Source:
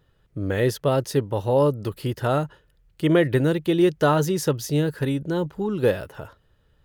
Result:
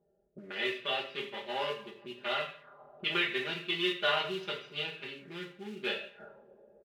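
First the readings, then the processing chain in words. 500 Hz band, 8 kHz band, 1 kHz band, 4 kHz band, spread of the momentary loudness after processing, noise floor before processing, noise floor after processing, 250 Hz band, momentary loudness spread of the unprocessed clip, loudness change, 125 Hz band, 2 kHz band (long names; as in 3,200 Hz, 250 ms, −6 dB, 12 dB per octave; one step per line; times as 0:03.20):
−15.5 dB, −22.5 dB, −9.5 dB, +3.0 dB, 15 LU, −63 dBFS, −73 dBFS, −19.5 dB, 10 LU, −11.5 dB, −27.5 dB, −1.5 dB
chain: adaptive Wiener filter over 41 samples
high shelf with overshoot 6,600 Hz −13 dB, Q 1.5
comb filter 5 ms, depth 97%
coupled-rooms reverb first 0.46 s, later 2.9 s, from −27 dB, DRR −3 dB
noise that follows the level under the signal 32 dB
envelope filter 620–2,700 Hz, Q 2.6, up, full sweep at −18.5 dBFS
one half of a high-frequency compander decoder only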